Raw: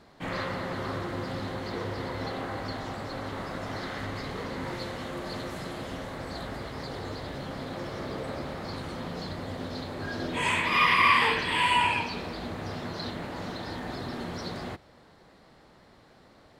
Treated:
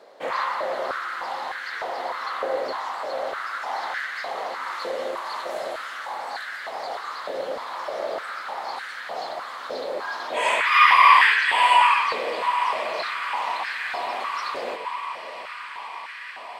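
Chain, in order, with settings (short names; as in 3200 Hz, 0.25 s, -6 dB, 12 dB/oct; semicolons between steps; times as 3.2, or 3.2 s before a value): diffused feedback echo 0.902 s, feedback 76%, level -13 dB; stepped high-pass 3.3 Hz 520–1600 Hz; gain +2.5 dB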